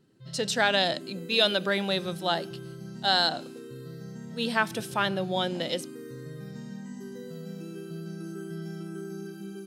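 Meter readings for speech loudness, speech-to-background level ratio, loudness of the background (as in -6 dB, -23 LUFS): -27.0 LUFS, 14.0 dB, -41.0 LUFS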